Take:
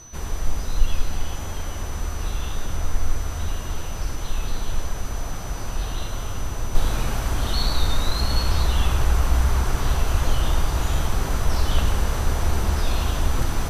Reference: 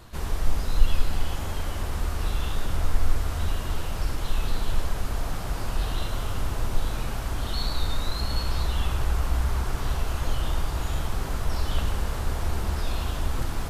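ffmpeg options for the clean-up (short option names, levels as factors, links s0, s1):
-filter_complex "[0:a]bandreject=f=6000:w=30,asplit=3[s0][s1][s2];[s0]afade=t=out:st=8.5:d=0.02[s3];[s1]highpass=f=140:w=0.5412,highpass=f=140:w=1.3066,afade=t=in:st=8.5:d=0.02,afade=t=out:st=8.62:d=0.02[s4];[s2]afade=t=in:st=8.62:d=0.02[s5];[s3][s4][s5]amix=inputs=3:normalize=0,asplit=3[s6][s7][s8];[s6]afade=t=out:st=10.13:d=0.02[s9];[s7]highpass=f=140:w=0.5412,highpass=f=140:w=1.3066,afade=t=in:st=10.13:d=0.02,afade=t=out:st=10.25:d=0.02[s10];[s8]afade=t=in:st=10.25:d=0.02[s11];[s9][s10][s11]amix=inputs=3:normalize=0,asetnsamples=n=441:p=0,asendcmd='6.75 volume volume -5.5dB',volume=1"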